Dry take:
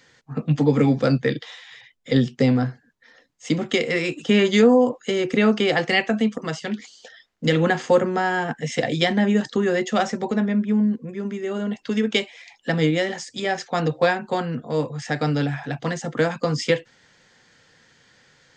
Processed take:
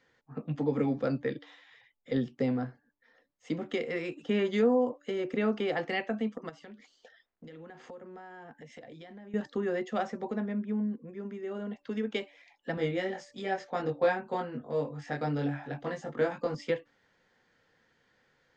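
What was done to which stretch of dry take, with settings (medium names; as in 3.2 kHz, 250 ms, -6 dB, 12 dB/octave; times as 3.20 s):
6.49–9.34 s: compression 12:1, threshold -33 dBFS
12.75–16.55 s: doubling 21 ms -2 dB
whole clip: low-pass 1.4 kHz 6 dB/octave; peaking EQ 130 Hz -6.5 dB 1.4 oct; de-hum 289.8 Hz, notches 4; trim -8.5 dB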